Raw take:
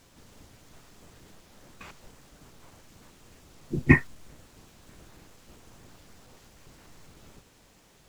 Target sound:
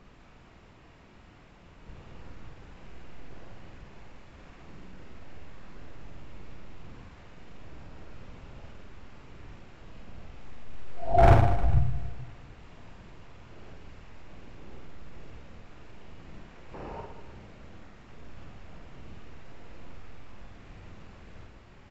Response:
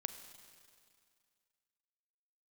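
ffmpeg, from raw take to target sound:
-filter_complex "[0:a]areverse,highshelf=f=6400:g=-10,asetrate=16273,aresample=44100,asoftclip=type=hard:threshold=0.112,aecho=1:1:50|115|199.5|309.4|452.2:0.631|0.398|0.251|0.158|0.1,asplit=2[s0][s1];[1:a]atrim=start_sample=2205[s2];[s1][s2]afir=irnorm=-1:irlink=0,volume=0.841[s3];[s0][s3]amix=inputs=2:normalize=0"

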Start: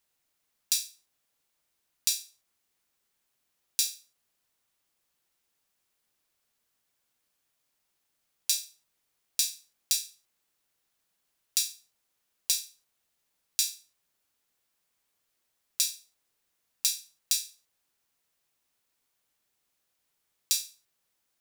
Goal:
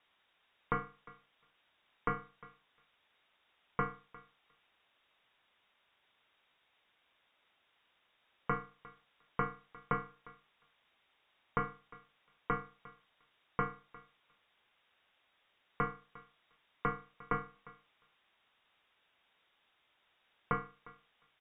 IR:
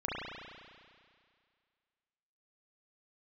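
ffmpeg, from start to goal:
-filter_complex "[0:a]asplit=2[s0][s1];[s1]adelay=354,lowpass=f=1600:p=1,volume=0.188,asplit=2[s2][s3];[s3]adelay=354,lowpass=f=1600:p=1,volume=0.19[s4];[s2][s4]amix=inputs=2:normalize=0[s5];[s0][s5]amix=inputs=2:normalize=0,lowpass=f=3200:t=q:w=0.5098,lowpass=f=3200:t=q:w=0.6013,lowpass=f=3200:t=q:w=0.9,lowpass=f=3200:t=q:w=2.563,afreqshift=-3800,volume=3.55"

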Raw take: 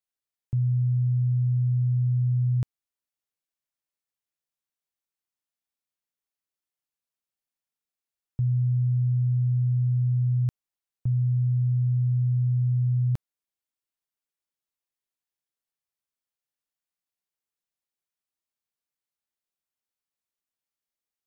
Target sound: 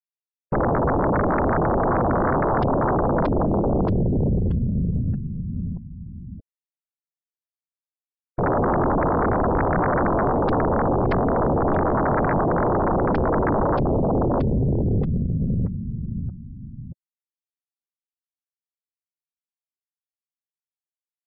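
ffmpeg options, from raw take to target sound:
-af "highpass=f=78:p=1,aecho=1:1:628|1256|1884|2512|3140|3768:0.596|0.292|0.143|0.0701|0.0343|0.0168,acompressor=threshold=0.0447:ratio=6,afftfilt=real='hypot(re,im)*cos(2*PI*random(0))':imag='hypot(re,im)*sin(2*PI*random(1))':win_size=512:overlap=0.75,acontrast=22,aeval=exprs='0.112*sin(PI/2*8.91*val(0)/0.112)':c=same,afftfilt=real='re*gte(hypot(re,im),0.00501)':imag='im*gte(hypot(re,im),0.00501)':win_size=1024:overlap=0.75,aresample=11025,aresample=44100,volume=1.26"

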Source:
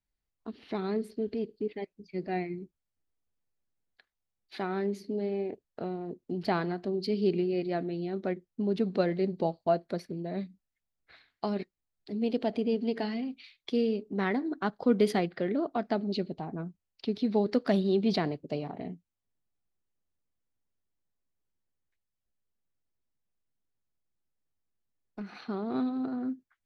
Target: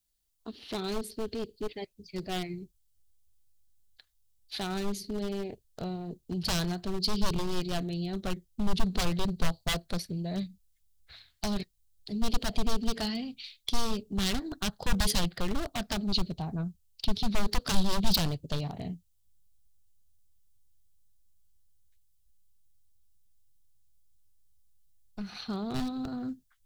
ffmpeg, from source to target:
-af "aeval=exprs='0.0473*(abs(mod(val(0)/0.0473+3,4)-2)-1)':c=same,aexciter=amount=4.5:drive=3:freq=3000,asubboost=boost=10.5:cutoff=93"

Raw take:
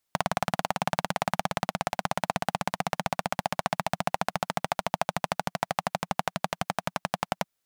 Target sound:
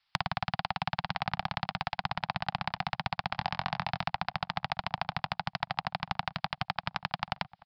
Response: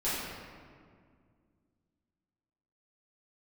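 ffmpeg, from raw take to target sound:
-filter_complex "[0:a]asplit=3[s0][s1][s2];[s0]afade=t=out:st=3.34:d=0.02[s3];[s1]asplit=2[s4][s5];[s5]adelay=23,volume=0.398[s6];[s4][s6]amix=inputs=2:normalize=0,afade=t=in:st=3.34:d=0.02,afade=t=out:st=4.02:d=0.02[s7];[s2]afade=t=in:st=4.02:d=0.02[s8];[s3][s7][s8]amix=inputs=3:normalize=0,aresample=11025,aresample=44100,firequalizer=gain_entry='entry(120,0);entry(350,-26);entry(770,5);entry(2600,8)':delay=0.05:min_phase=1,acrossover=split=430[s9][s10];[s10]acompressor=threshold=0.0251:ratio=5[s11];[s9][s11]amix=inputs=2:normalize=0,asplit=2[s12][s13];[s13]adelay=834,lowpass=f=830:p=1,volume=0.141,asplit=2[s14][s15];[s15]adelay=834,lowpass=f=830:p=1,volume=0.35,asplit=2[s16][s17];[s17]adelay=834,lowpass=f=830:p=1,volume=0.35[s18];[s12][s14][s16][s18]amix=inputs=4:normalize=0,volume=1.19"

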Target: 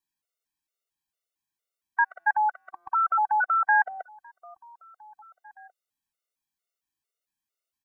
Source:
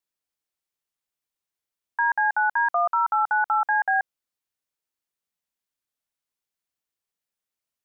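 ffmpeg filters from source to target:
-filter_complex "[0:a]asplit=2[s0][s1];[s1]adelay=1691,volume=0.0708,highshelf=f=4000:g=-38[s2];[s0][s2]amix=inputs=2:normalize=0,afftfilt=real='re*gt(sin(2*PI*2.2*pts/sr)*(1-2*mod(floor(b*sr/1024/380),2)),0)':imag='im*gt(sin(2*PI*2.2*pts/sr)*(1-2*mod(floor(b*sr/1024/380),2)),0)':win_size=1024:overlap=0.75,volume=1.26"

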